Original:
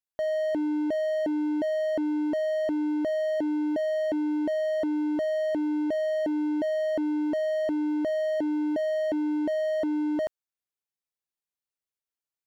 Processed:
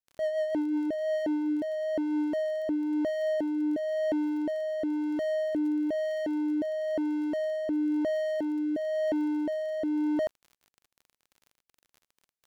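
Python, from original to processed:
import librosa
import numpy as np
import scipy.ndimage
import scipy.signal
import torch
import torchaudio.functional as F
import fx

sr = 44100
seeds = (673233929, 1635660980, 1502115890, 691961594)

y = fx.rotary_switch(x, sr, hz=7.0, then_hz=1.0, switch_at_s=0.26)
y = fx.dmg_crackle(y, sr, seeds[0], per_s=36.0, level_db=-44.0)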